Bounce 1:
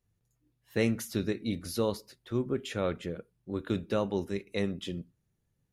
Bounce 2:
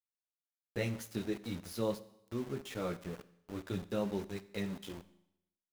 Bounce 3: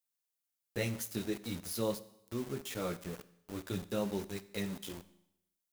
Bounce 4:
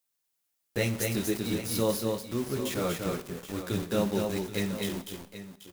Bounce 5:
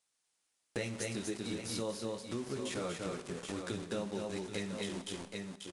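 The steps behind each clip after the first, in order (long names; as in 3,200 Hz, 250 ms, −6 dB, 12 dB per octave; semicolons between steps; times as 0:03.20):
multi-voice chorus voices 4, 0.46 Hz, delay 13 ms, depth 3.9 ms; centre clipping without the shift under −41.5 dBFS; four-comb reverb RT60 0.81 s, combs from 31 ms, DRR 15.5 dB; level −3.5 dB
high-shelf EQ 5,400 Hz +10.5 dB
multi-tap delay 239/266/778 ms −4/−14/−12.5 dB; level +6.5 dB
downsampling to 22,050 Hz; downward compressor 4 to 1, threshold −40 dBFS, peak gain reduction 15 dB; low-shelf EQ 130 Hz −7 dB; level +4 dB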